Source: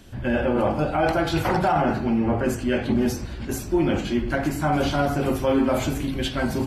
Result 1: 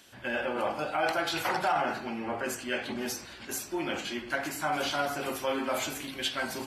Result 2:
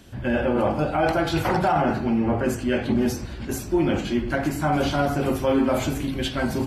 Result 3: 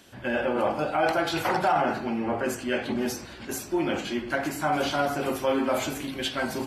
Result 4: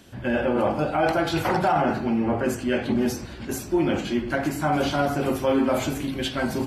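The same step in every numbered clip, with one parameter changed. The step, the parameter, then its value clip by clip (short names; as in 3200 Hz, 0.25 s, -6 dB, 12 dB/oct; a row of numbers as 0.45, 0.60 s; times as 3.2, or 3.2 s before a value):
HPF, cutoff: 1400, 40, 520, 150 Hz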